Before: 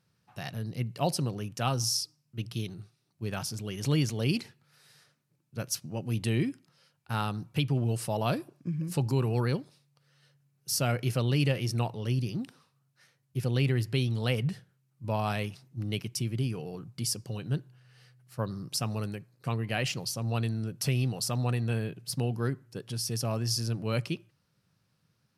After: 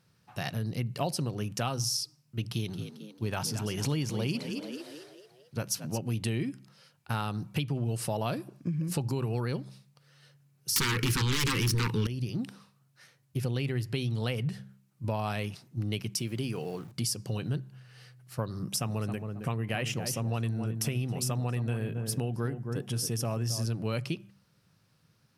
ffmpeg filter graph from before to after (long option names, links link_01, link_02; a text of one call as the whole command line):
ffmpeg -i in.wav -filter_complex "[0:a]asettb=1/sr,asplit=3[link_01][link_02][link_03];[link_01]atrim=end=2.504[link_04];[link_02]atrim=start=2.5:end=5.98,asetpts=PTS-STARTPTS,afade=type=in:duration=0.004:curve=qsin,afade=type=out:start_time=3.476:duration=0.004:curve=qsin,equalizer=frequency=910:width_type=o:width=0.35:gain=5,asplit=6[link_05][link_06][link_07][link_08][link_09][link_10];[link_06]adelay=222,afreqshift=51,volume=-12.5dB[link_11];[link_07]adelay=444,afreqshift=102,volume=-19.1dB[link_12];[link_08]adelay=666,afreqshift=153,volume=-25.6dB[link_13];[link_09]adelay=888,afreqshift=204,volume=-32.2dB[link_14];[link_10]adelay=1110,afreqshift=255,volume=-38.7dB[link_15];[link_05][link_11][link_12][link_13][link_14][link_15]amix=inputs=6:normalize=0,atrim=end_sample=153468[link_16];[link_03]atrim=start=5.976[link_17];[link_04][link_16]acrossfade=duration=0.004:curve1=hsin:curve2=qsin[link_18];[link_18][link_17]acrossfade=duration=0.004:curve1=qsin:curve2=hsin,asettb=1/sr,asplit=3[link_19][link_20][link_21];[link_19]atrim=end=10.764[link_22];[link_20]atrim=start=10.76:end=12.07,asetpts=PTS-STARTPTS,afade=type=in:duration=0.004:curve=qsin,afade=type=out:start_time=1.306:duration=0.004:curve=qsin,lowshelf=frequency=79:gain=-8.5,aeval=exprs='0.211*sin(PI/2*7.08*val(0)/0.211)':channel_layout=same,asuperstop=centerf=660:order=4:qfactor=1[link_23];[link_21]atrim=start=12.066[link_24];[link_22][link_23]acrossfade=duration=0.004:curve1=hsin:curve2=qsin[link_25];[link_25][link_24]acrossfade=duration=0.004:curve1=qsin:curve2=hsin,asettb=1/sr,asplit=3[link_26][link_27][link_28];[link_26]atrim=end=16.144[link_29];[link_27]atrim=start=16.14:end=16.92,asetpts=PTS-STARTPTS,afade=type=in:duration=0.004:curve=qsin,afade=type=out:start_time=0.776:duration=0.004:curve=qsin,highpass=frequency=230:poles=1,aeval=exprs='val(0)*gte(abs(val(0)),0.00158)':channel_layout=same[link_30];[link_28]atrim=start=16.916[link_31];[link_29][link_30]acrossfade=duration=0.004:curve1=hsin:curve2=qsin[link_32];[link_32][link_31]acrossfade=duration=0.004:curve1=qsin:curve2=hsin,asettb=1/sr,asplit=3[link_33][link_34][link_35];[link_33]atrim=end=18.594[link_36];[link_34]atrim=start=18.59:end=23.66,asetpts=PTS-STARTPTS,afade=type=in:duration=0.004:curve=qsin,afade=type=out:start_time=5.066:duration=0.004:curve=qsin,equalizer=frequency=4400:width=4.2:gain=-11,asplit=2[link_37][link_38];[link_38]adelay=270,lowpass=frequency=950:poles=1,volume=-8.5dB,asplit=2[link_39][link_40];[link_40]adelay=270,lowpass=frequency=950:poles=1,volume=0.28,asplit=2[link_41][link_42];[link_42]adelay=270,lowpass=frequency=950:poles=1,volume=0.28[link_43];[link_37][link_39][link_41][link_43]amix=inputs=4:normalize=0,atrim=end_sample=223587[link_44];[link_35]atrim=start=23.656[link_45];[link_36][link_44]acrossfade=duration=0.004:curve1=hsin:curve2=qsin[link_46];[link_46][link_45]acrossfade=duration=0.004:curve1=qsin:curve2=hsin,bandreject=frequency=65.86:width_type=h:width=4,bandreject=frequency=131.72:width_type=h:width=4,bandreject=frequency=197.58:width_type=h:width=4,acompressor=threshold=-34dB:ratio=4,volume=5.5dB" out.wav